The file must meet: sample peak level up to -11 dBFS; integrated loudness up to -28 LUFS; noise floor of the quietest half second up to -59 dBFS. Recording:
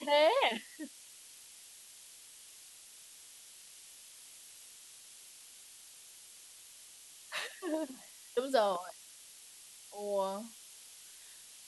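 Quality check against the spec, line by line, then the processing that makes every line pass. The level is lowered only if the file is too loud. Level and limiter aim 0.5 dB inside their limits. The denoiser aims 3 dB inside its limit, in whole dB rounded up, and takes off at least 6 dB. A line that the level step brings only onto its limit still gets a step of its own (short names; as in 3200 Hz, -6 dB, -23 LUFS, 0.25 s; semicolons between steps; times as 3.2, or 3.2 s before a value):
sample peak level -17.0 dBFS: OK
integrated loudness -34.5 LUFS: OK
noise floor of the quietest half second -55 dBFS: fail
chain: denoiser 7 dB, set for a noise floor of -55 dBFS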